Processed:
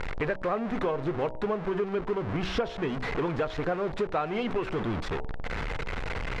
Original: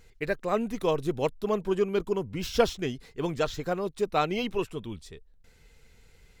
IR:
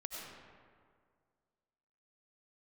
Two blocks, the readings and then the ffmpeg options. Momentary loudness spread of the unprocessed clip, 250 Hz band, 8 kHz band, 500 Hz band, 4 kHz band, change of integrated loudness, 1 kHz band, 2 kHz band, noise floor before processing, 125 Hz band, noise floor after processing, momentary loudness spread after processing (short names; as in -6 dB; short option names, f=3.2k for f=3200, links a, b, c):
8 LU, 0.0 dB, n/a, -1.5 dB, -2.5 dB, -1.5 dB, 0.0 dB, +3.0 dB, -58 dBFS, +2.5 dB, -37 dBFS, 5 LU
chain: -af "aeval=exprs='val(0)+0.5*0.0422*sgn(val(0))':c=same,lowpass=1.4k,tiltshelf=f=780:g=-5.5,bandreject=f=62.93:t=h:w=4,bandreject=f=125.86:t=h:w=4,bandreject=f=188.79:t=h:w=4,bandreject=f=251.72:t=h:w=4,bandreject=f=314.65:t=h:w=4,bandreject=f=377.58:t=h:w=4,bandreject=f=440.51:t=h:w=4,bandreject=f=503.44:t=h:w=4,bandreject=f=566.37:t=h:w=4,bandreject=f=629.3:t=h:w=4,bandreject=f=692.23:t=h:w=4,bandreject=f=755.16:t=h:w=4,bandreject=f=818.09:t=h:w=4,bandreject=f=881.02:t=h:w=4,bandreject=f=943.95:t=h:w=4,acompressor=threshold=-33dB:ratio=6,volume=7dB"